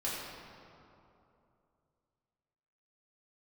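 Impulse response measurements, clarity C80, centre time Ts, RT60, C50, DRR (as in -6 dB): 0.5 dB, 129 ms, 2.8 s, -1.5 dB, -8.0 dB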